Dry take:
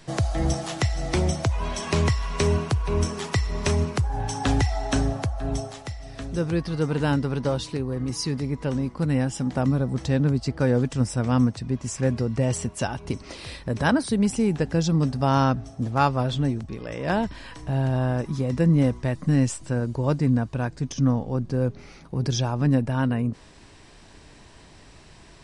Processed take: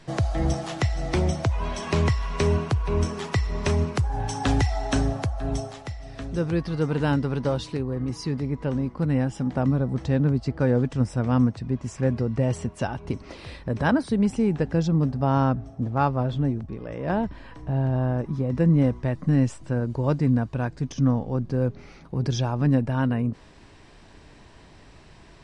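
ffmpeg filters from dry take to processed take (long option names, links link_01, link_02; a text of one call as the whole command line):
ffmpeg -i in.wav -af "asetnsamples=nb_out_samples=441:pad=0,asendcmd='3.95 lowpass f 8100;5.71 lowpass f 4200;7.83 lowpass f 2100;14.87 lowpass f 1100;18.55 lowpass f 2000;19.9 lowpass f 3500',lowpass=frequency=3800:poles=1" out.wav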